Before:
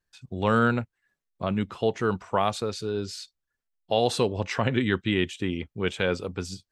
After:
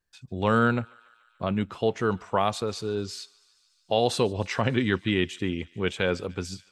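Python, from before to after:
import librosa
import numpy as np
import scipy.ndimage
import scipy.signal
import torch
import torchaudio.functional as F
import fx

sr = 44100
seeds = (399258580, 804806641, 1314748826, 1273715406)

y = fx.echo_thinned(x, sr, ms=146, feedback_pct=78, hz=1000.0, wet_db=-23.5)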